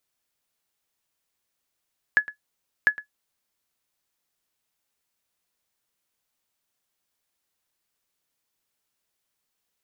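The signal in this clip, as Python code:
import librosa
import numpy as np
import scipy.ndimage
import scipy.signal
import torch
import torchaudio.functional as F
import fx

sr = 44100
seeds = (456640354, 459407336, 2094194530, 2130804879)

y = fx.sonar_ping(sr, hz=1700.0, decay_s=0.11, every_s=0.7, pings=2, echo_s=0.11, echo_db=-18.0, level_db=-8.5)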